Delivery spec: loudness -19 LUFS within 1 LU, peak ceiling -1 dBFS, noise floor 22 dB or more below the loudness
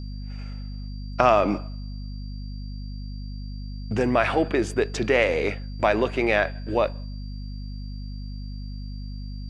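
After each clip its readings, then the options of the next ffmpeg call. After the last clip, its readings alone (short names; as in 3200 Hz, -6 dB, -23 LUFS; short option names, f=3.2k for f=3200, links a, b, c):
hum 50 Hz; harmonics up to 250 Hz; hum level -31 dBFS; steady tone 4700 Hz; tone level -50 dBFS; loudness -23.5 LUFS; peak -2.0 dBFS; loudness target -19.0 LUFS
-> -af "bandreject=f=50:t=h:w=6,bandreject=f=100:t=h:w=6,bandreject=f=150:t=h:w=6,bandreject=f=200:t=h:w=6,bandreject=f=250:t=h:w=6"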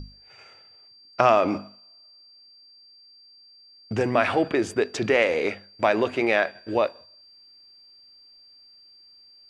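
hum none; steady tone 4700 Hz; tone level -50 dBFS
-> -af "bandreject=f=4.7k:w=30"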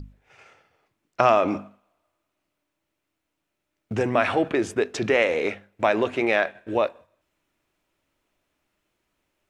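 steady tone none; loudness -23.5 LUFS; peak -2.5 dBFS; loudness target -19.0 LUFS
-> -af "volume=4.5dB,alimiter=limit=-1dB:level=0:latency=1"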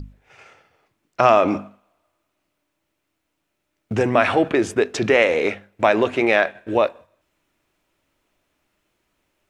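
loudness -19.0 LUFS; peak -1.0 dBFS; noise floor -76 dBFS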